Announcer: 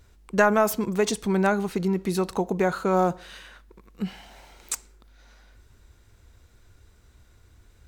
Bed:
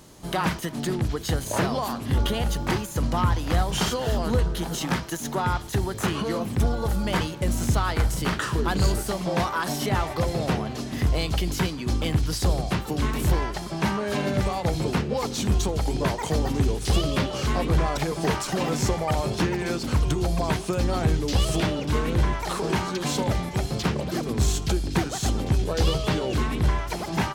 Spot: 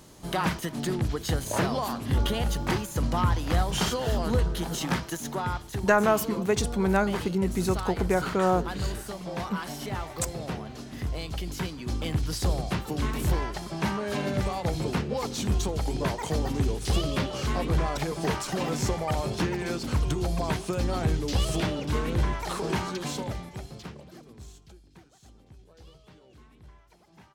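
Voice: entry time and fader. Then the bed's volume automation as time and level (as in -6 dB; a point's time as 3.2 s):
5.50 s, -2.0 dB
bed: 5.05 s -2 dB
5.93 s -9 dB
11.24 s -9 dB
12.37 s -3.5 dB
22.88 s -3.5 dB
24.87 s -29.5 dB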